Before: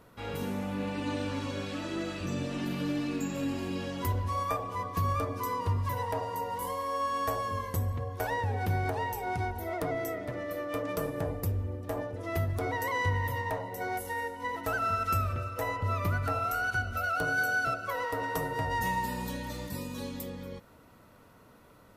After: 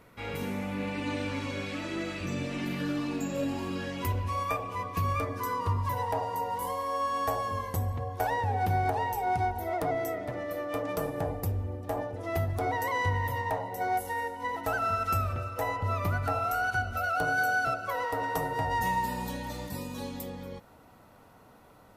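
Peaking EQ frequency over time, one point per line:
peaking EQ +9 dB 0.34 oct
2.72 s 2.2 kHz
3.37 s 500 Hz
4.00 s 2.5 kHz
5.12 s 2.5 kHz
5.97 s 780 Hz

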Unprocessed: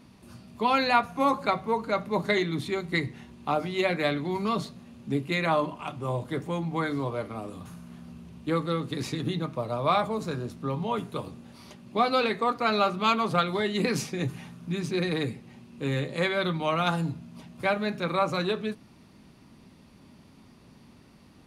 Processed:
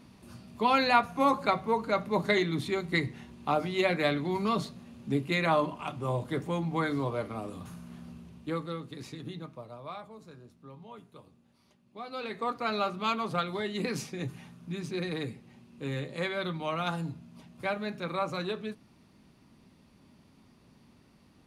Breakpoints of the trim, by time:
8.06 s -1 dB
8.94 s -11 dB
9.45 s -11 dB
9.97 s -18.5 dB
12.01 s -18.5 dB
12.44 s -6 dB

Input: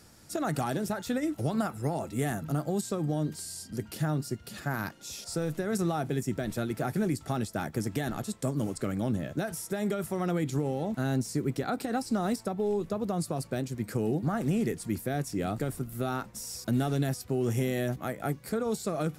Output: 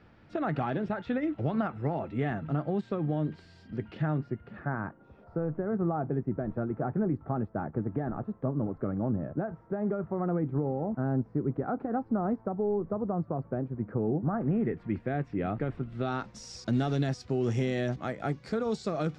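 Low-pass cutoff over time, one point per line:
low-pass 24 dB/octave
3.94 s 2.9 kHz
5.01 s 1.3 kHz
14.28 s 1.3 kHz
14.94 s 2.5 kHz
15.63 s 2.5 kHz
16.32 s 5.6 kHz

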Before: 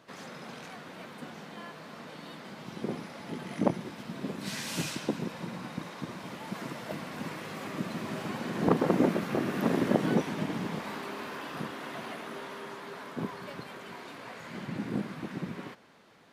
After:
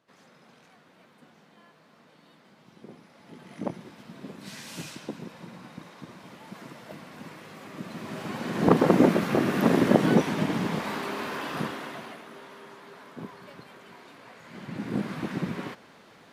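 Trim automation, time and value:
3.01 s -12.5 dB
3.68 s -5.5 dB
7.67 s -5.5 dB
8.77 s +6 dB
11.65 s +6 dB
12.25 s -5 dB
14.43 s -5 dB
15.15 s +6 dB

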